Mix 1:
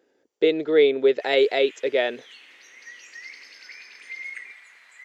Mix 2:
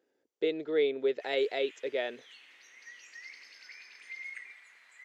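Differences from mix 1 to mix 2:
speech −10.5 dB
background −7.0 dB

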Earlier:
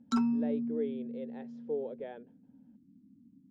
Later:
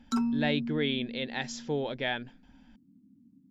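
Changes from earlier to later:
speech: remove resonant band-pass 460 Hz, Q 4.1
master: remove high-frequency loss of the air 56 metres

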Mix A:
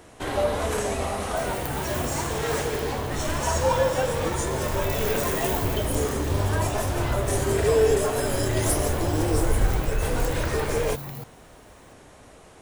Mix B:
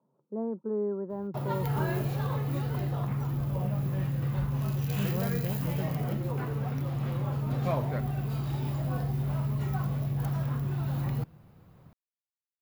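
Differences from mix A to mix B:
first sound: muted
master: add bass and treble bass +9 dB, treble −9 dB

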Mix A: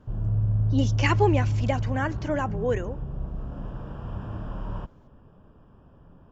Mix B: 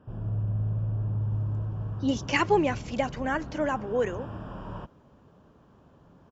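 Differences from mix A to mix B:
speech: entry +1.30 s
master: add high-pass filter 150 Hz 6 dB per octave

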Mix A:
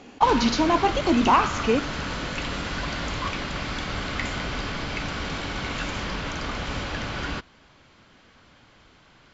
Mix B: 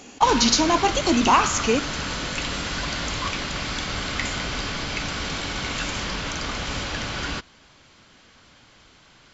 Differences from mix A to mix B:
speech: remove high-frequency loss of the air 83 metres
master: remove low-pass filter 2,500 Hz 6 dB per octave

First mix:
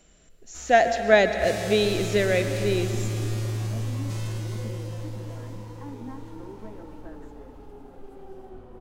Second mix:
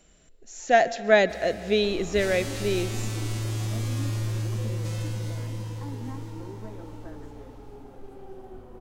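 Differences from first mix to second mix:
speech: send −8.5 dB
first sound: entry +0.75 s

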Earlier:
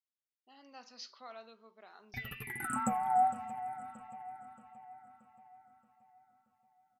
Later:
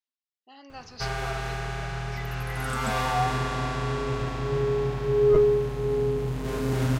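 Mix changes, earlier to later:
speech +9.5 dB
first sound: unmuted

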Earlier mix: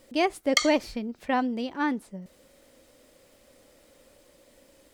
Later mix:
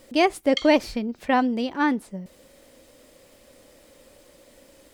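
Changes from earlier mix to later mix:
speech +5.0 dB
background: add resonant band-pass 3,100 Hz, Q 3.6

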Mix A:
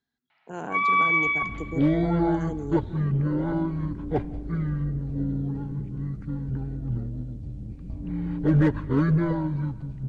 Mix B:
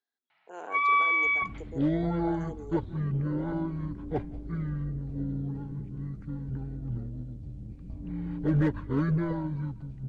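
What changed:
speech: add four-pole ladder high-pass 340 Hz, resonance 25%
second sound −4.5 dB
reverb: off

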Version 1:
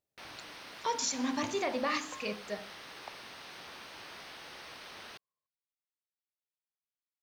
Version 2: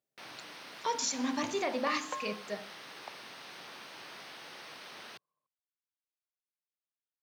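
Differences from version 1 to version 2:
second sound +9.0 dB
master: add high-pass filter 120 Hz 24 dB per octave

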